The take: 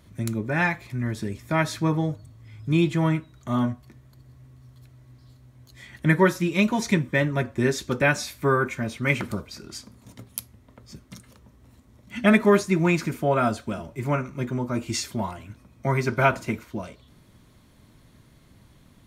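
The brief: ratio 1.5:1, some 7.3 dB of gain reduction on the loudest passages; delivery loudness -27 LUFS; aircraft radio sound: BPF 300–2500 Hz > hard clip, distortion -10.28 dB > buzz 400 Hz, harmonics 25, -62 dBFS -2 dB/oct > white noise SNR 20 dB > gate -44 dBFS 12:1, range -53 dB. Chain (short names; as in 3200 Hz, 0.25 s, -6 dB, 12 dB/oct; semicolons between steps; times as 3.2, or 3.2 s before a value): compressor 1.5:1, threshold -33 dBFS; BPF 300–2500 Hz; hard clip -27 dBFS; buzz 400 Hz, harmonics 25, -62 dBFS -2 dB/oct; white noise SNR 20 dB; gate -44 dBFS 12:1, range -53 dB; gain +8 dB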